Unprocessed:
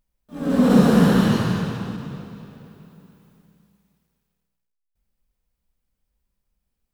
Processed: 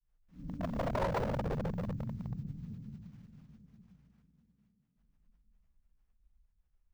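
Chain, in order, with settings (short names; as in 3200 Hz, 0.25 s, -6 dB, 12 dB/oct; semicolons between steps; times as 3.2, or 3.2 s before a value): thinning echo 0.86 s, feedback 37%, high-pass 210 Hz, level -10.5 dB; reverb RT60 1.6 s, pre-delay 8 ms, DRR -6.5 dB; in parallel at 0 dB: compressor 12:1, threshold -19 dBFS, peak gain reduction 18 dB; on the sum: inverse Chebyshev band-stop 980–8500 Hz, stop band 80 dB; grains 0.1 s, grains 20/s, spray 12 ms, pitch spread up and down by 0 st; wavefolder -14 dBFS; bell 220 Hz -14.5 dB 2.6 oct; running maximum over 9 samples; gain -5 dB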